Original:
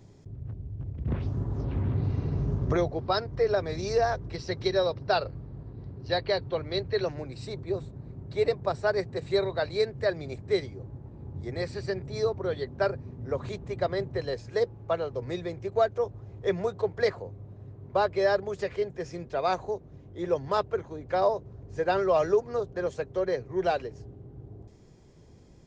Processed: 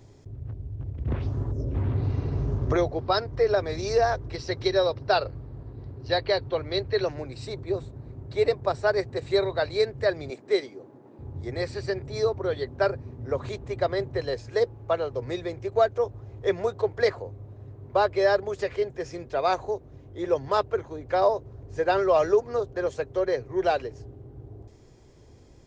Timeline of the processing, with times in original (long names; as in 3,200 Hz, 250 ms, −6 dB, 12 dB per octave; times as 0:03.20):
0:01.52–0:01.75: gain on a spectral selection 680–5,100 Hz −14 dB
0:10.30–0:11.19: high-pass filter 200 Hz 24 dB per octave
whole clip: parametric band 180 Hz −10.5 dB 0.47 octaves; level +3 dB